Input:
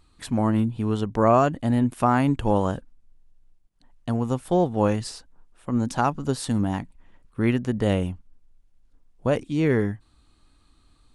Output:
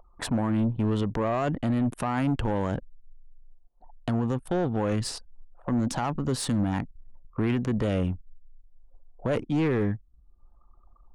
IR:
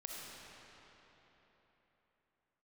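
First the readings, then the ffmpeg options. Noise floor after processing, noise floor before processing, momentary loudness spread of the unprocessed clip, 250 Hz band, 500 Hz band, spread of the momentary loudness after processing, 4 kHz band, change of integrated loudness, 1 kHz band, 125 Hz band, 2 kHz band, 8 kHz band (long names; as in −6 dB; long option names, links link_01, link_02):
−58 dBFS, −60 dBFS, 15 LU, −3.0 dB, −5.5 dB, 9 LU, 0.0 dB, −4.0 dB, −7.5 dB, −2.5 dB, −3.5 dB, +0.5 dB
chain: -filter_complex "[0:a]acrossover=split=540|960[link_01][link_02][link_03];[link_02]acompressor=mode=upward:threshold=-36dB:ratio=2.5[link_04];[link_01][link_04][link_03]amix=inputs=3:normalize=0,alimiter=limit=-16.5dB:level=0:latency=1:release=25,highshelf=frequency=3700:gain=-2,aeval=exprs='(tanh(14.1*val(0)+0.25)-tanh(0.25))/14.1':channel_layout=same,anlmdn=0.1,asplit=2[link_05][link_06];[link_06]acompressor=threshold=-40dB:ratio=6,volume=-2dB[link_07];[link_05][link_07]amix=inputs=2:normalize=0,volume=2dB"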